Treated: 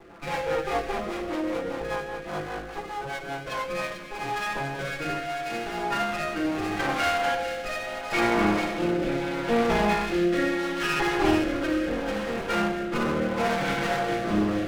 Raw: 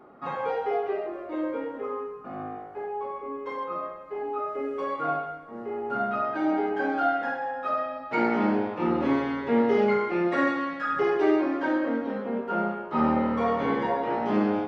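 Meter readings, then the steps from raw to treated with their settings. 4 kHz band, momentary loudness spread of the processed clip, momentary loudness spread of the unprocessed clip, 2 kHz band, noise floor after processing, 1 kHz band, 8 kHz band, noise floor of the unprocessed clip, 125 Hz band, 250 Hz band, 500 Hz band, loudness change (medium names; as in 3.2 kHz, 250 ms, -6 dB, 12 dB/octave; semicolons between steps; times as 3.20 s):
+12.5 dB, 10 LU, 11 LU, +4.5 dB, -38 dBFS, -0.5 dB, no reading, -41 dBFS, +5.0 dB, -0.5 dB, -0.5 dB, +0.5 dB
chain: comb filter that takes the minimum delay 5.9 ms; spring tank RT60 3.3 s, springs 57 ms, chirp 70 ms, DRR 8 dB; in parallel at +2 dB: compression, threshold -34 dBFS, peak gain reduction 14 dB; on the sum: treble shelf 4.2 kHz +8.5 dB; on a send: feedback echo behind a high-pass 444 ms, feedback 49%, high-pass 2.4 kHz, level -4 dB; on the sum: rotary cabinet horn 5 Hz, later 0.75 Hz, at 3.37 s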